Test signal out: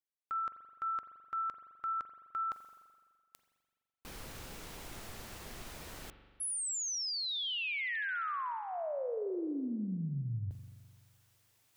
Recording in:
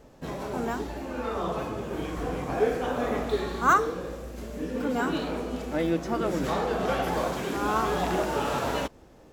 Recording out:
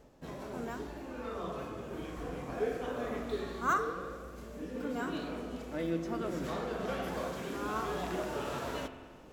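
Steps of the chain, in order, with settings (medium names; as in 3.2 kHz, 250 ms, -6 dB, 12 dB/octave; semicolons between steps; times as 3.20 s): dynamic bell 820 Hz, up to -7 dB, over -47 dBFS, Q 6.3; reverse; upward compressor, threshold -38 dBFS; reverse; spring tank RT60 1.7 s, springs 42 ms, chirp 50 ms, DRR 9 dB; trim -9 dB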